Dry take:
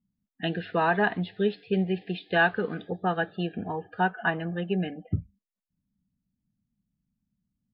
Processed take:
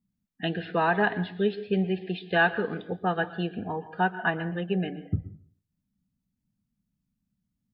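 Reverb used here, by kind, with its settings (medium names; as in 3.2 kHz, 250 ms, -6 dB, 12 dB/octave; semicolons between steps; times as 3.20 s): plate-style reverb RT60 0.5 s, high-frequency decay 0.55×, pre-delay 105 ms, DRR 14.5 dB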